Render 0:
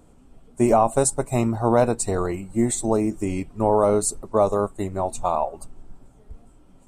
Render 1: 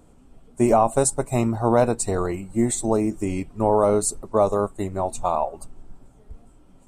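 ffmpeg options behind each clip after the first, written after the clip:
-af anull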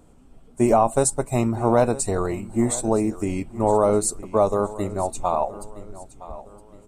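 -af "aecho=1:1:966|1932|2898:0.141|0.0523|0.0193"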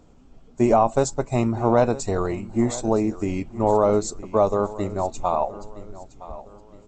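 -ar 16000 -c:a g722

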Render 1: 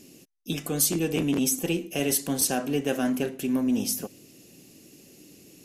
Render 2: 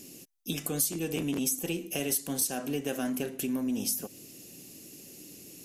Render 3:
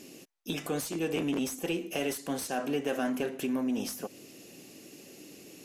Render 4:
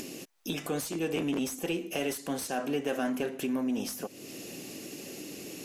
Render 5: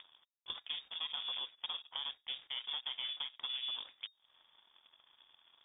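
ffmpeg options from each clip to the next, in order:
-af "highshelf=f=6200:g=8.5,acompressor=threshold=0.0282:ratio=2.5"
-filter_complex "[0:a]asplit=2[s0][s1];[s1]highpass=f=720:p=1,volume=6.31,asoftclip=type=tanh:threshold=0.211[s2];[s0][s2]amix=inputs=2:normalize=0,lowpass=f=1400:p=1,volume=0.501,volume=0.841"
-af "acompressor=mode=upward:threshold=0.0224:ratio=2.5"
-filter_complex "[0:a]aeval=exprs='0.112*(cos(1*acos(clip(val(0)/0.112,-1,1)))-cos(1*PI/2))+0.0158*(cos(7*acos(clip(val(0)/0.112,-1,1)))-cos(7*PI/2))':c=same,acrossover=split=880|2900[s0][s1][s2];[s0]acompressor=threshold=0.0224:ratio=4[s3];[s1]acompressor=threshold=0.00355:ratio=4[s4];[s2]acompressor=threshold=0.00447:ratio=4[s5];[s3][s4][s5]amix=inputs=3:normalize=0,lowpass=f=3100:t=q:w=0.5098,lowpass=f=3100:t=q:w=0.6013,lowpass=f=3100:t=q:w=0.9,lowpass=f=3100:t=q:w=2.563,afreqshift=-3700,volume=0.596"

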